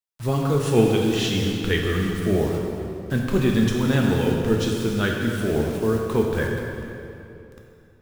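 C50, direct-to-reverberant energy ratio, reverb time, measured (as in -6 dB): 1.5 dB, -0.5 dB, 2.8 s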